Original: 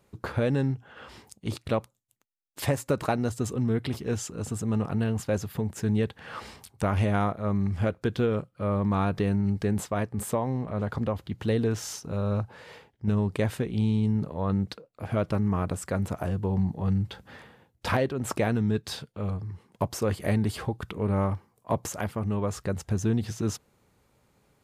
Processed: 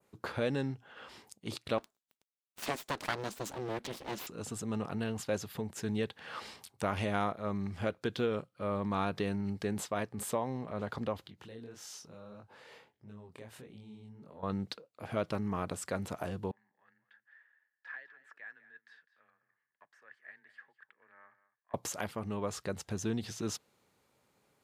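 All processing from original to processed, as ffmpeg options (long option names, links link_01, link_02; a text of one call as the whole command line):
ffmpeg -i in.wav -filter_complex "[0:a]asettb=1/sr,asplit=3[link_01][link_02][link_03];[link_01]atrim=end=1.784[link_04];[link_02]atrim=start=1.78:end=4.27,asetpts=PTS-STARTPTS,afade=type=in:duration=0.004:curve=qsin,afade=type=out:start_time=2.486:duration=0.004:curve=qsin,highpass=81,aeval=exprs='abs(val(0))':channel_layout=same[link_05];[link_03]atrim=start=4.266[link_06];[link_04][link_05]acrossfade=duration=0.004:curve1=hsin:curve2=qsin[link_07];[link_07][link_06]acrossfade=duration=0.004:curve1=qsin:curve2=hsin,asettb=1/sr,asplit=3[link_08][link_09][link_10];[link_08]atrim=end=11.274[link_11];[link_09]atrim=start=11.27:end=14.43,asetpts=PTS-STARTPTS,afade=type=in:duration=0.004:curve=qsin,afade=type=out:start_time=3.156:duration=0.004:curve=qsin,acompressor=threshold=-39dB:ratio=3:attack=3.2:release=140:knee=1:detection=peak,flanger=delay=20:depth=6.5:speed=1.6[link_12];[link_10]atrim=start=14.426[link_13];[link_11][link_12]acrossfade=duration=0.004:curve1=hsin:curve2=qsin[link_14];[link_14][link_13]acrossfade=duration=0.004:curve1=qsin:curve2=hsin,asettb=1/sr,asplit=3[link_15][link_16][link_17];[link_15]atrim=end=16.514[link_18];[link_16]atrim=start=16.51:end=21.74,asetpts=PTS-STARTPTS,afade=type=in:duration=0.004:curve=qsin,afade=type=out:start_time=5.226:duration=0.004:curve=qsin,bandpass=frequency=1700:width_type=q:width=15,afreqshift=20,aecho=1:1:204:0.168,atrim=end_sample=230643[link_19];[link_17]atrim=start=21.736[link_20];[link_18][link_19]acrossfade=duration=0.004:curve1=hsin:curve2=qsin[link_21];[link_21][link_20]acrossfade=duration=0.004:curve1=qsin:curve2=hsin,highpass=frequency=260:poles=1,adynamicequalizer=threshold=0.00316:dfrequency=3900:dqfactor=1:tfrequency=3900:tqfactor=1:attack=5:release=100:ratio=0.375:range=2.5:mode=boostabove:tftype=bell,volume=-4.5dB" out.wav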